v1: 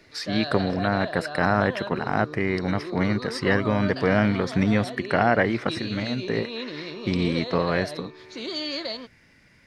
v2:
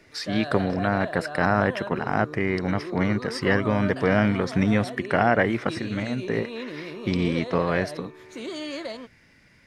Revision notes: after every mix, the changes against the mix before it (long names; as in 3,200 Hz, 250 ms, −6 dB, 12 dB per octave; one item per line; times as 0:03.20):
background: remove low-pass with resonance 4,700 Hz, resonance Q 4.1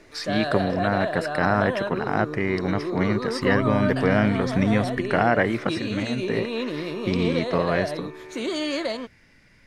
second voice: add spectral tilt −4.5 dB per octave
background +6.5 dB